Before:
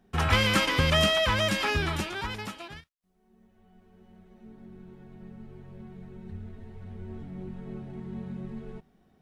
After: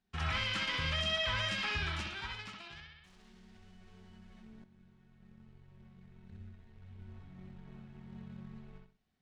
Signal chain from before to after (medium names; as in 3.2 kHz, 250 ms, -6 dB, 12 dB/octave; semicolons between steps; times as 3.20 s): companding laws mixed up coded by A; amplifier tone stack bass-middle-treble 5-5-5; peak limiter -30 dBFS, peak gain reduction 8.5 dB; distance through air 110 m; bucket-brigade echo 64 ms, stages 2048, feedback 31%, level -3 dB; 2.51–4.64 s: level flattener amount 70%; trim +5 dB